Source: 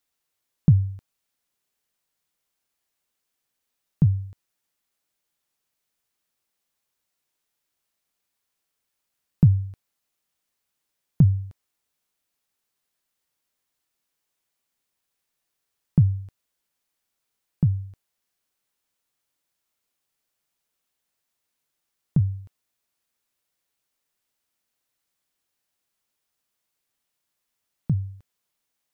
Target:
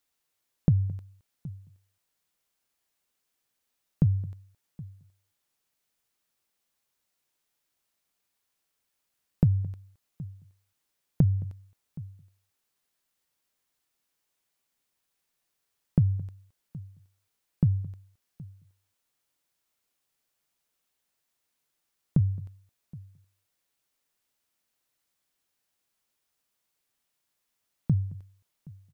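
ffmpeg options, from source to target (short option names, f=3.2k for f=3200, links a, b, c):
-filter_complex "[0:a]asplit=2[a][b];[b]aecho=0:1:771:0.0668[c];[a][c]amix=inputs=2:normalize=0,acompressor=threshold=-18dB:ratio=6,asplit=2[d][e];[e]aecho=0:1:218:0.0841[f];[d][f]amix=inputs=2:normalize=0"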